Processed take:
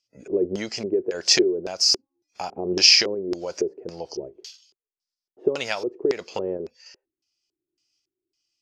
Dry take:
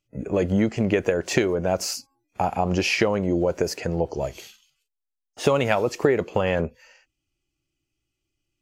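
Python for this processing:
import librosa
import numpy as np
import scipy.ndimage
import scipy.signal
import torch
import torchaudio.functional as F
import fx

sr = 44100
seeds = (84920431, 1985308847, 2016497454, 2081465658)

y = fx.riaa(x, sr, side='recording')
y = fx.tremolo_random(y, sr, seeds[0], hz=3.5, depth_pct=55)
y = fx.filter_lfo_lowpass(y, sr, shape='square', hz=1.8, low_hz=380.0, high_hz=5100.0, q=6.3)
y = y * librosa.db_to_amplitude(-3.0)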